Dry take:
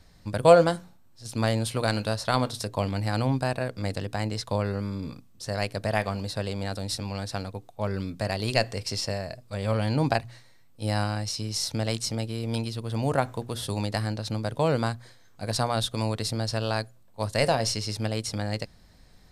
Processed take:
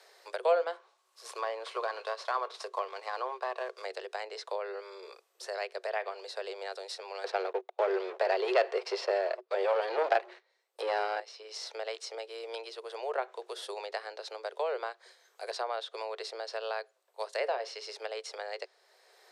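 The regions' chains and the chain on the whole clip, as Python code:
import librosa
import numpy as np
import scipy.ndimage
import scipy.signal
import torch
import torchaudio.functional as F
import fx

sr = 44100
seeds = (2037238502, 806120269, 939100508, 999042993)

y = fx.chain(x, sr, fx.cvsd(bps=64000),
    fx.peak_eq(hz=1100.0, db=14.0, octaves=0.21), at=(0.73, 3.85))
y = fx.chain(y, sr, fx.highpass(hz=51.0, slope=24),
    fx.low_shelf(hz=490.0, db=9.0),
    fx.leveller(passes=3), at=(7.24, 11.2))
y = fx.env_lowpass_down(y, sr, base_hz=2600.0, full_db=-21.0)
y = scipy.signal.sosfilt(scipy.signal.cheby1(8, 1.0, 370.0, 'highpass', fs=sr, output='sos'), y)
y = fx.band_squash(y, sr, depth_pct=40)
y = F.gain(torch.from_numpy(y), -6.5).numpy()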